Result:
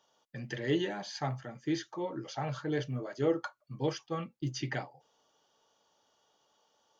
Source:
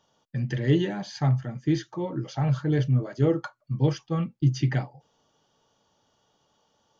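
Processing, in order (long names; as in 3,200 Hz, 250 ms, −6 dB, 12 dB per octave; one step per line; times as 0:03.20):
bass and treble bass −14 dB, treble +1 dB
level −2.5 dB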